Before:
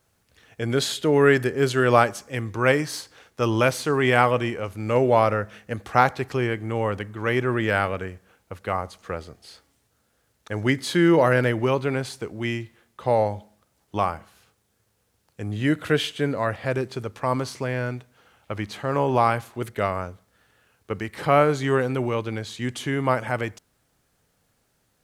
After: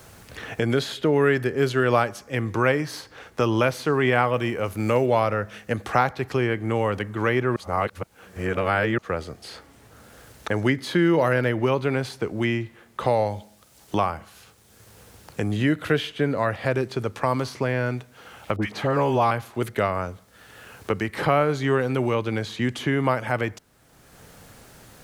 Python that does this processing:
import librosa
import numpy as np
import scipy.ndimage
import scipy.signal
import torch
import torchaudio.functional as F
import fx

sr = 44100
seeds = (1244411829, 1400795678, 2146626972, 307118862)

y = fx.high_shelf(x, sr, hz=8300.0, db=11.0, at=(4.33, 5.06))
y = fx.dispersion(y, sr, late='highs', ms=60.0, hz=1200.0, at=(18.56, 19.31))
y = fx.edit(y, sr, fx.reverse_span(start_s=7.56, length_s=1.42), tone=tone)
y = fx.dynamic_eq(y, sr, hz=8200.0, q=1.4, threshold_db=-50.0, ratio=4.0, max_db=-6)
y = fx.band_squash(y, sr, depth_pct=70)